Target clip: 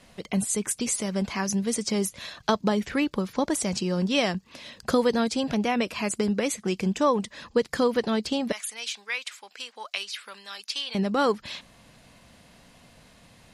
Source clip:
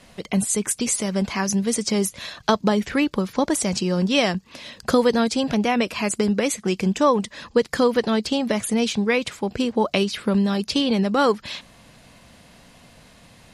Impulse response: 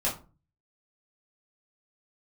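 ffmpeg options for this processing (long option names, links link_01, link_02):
-filter_complex "[0:a]asettb=1/sr,asplit=3[link_01][link_02][link_03];[link_01]atrim=end=8.524[link_04];[link_02]atrim=start=8.52:end=10.95,asetpts=PTS-STARTPTS,afade=type=in:duration=0.004:curve=qsin,afade=type=out:start_time=2.426:duration=0.004:curve=qsin,highpass=1500[link_05];[link_03]atrim=start=10.946[link_06];[link_04][link_05]acrossfade=duration=0.004:curve1=hsin:curve2=qsin[link_07];[link_07][link_06]acrossfade=duration=0.004:curve1=qsin:curve2=hsin,volume=-4.5dB"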